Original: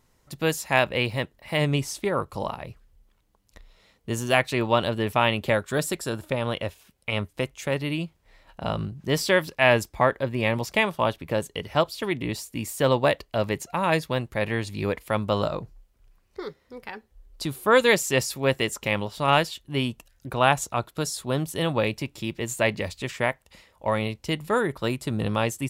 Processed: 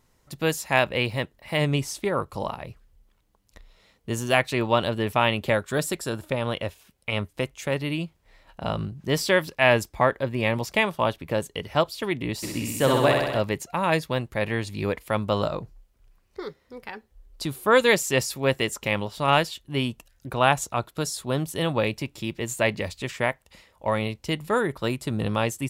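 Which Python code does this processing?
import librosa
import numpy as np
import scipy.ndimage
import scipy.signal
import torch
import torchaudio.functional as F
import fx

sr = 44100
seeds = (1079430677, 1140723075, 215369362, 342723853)

y = fx.room_flutter(x, sr, wall_m=11.0, rt60_s=1.2, at=(12.42, 13.39), fade=0.02)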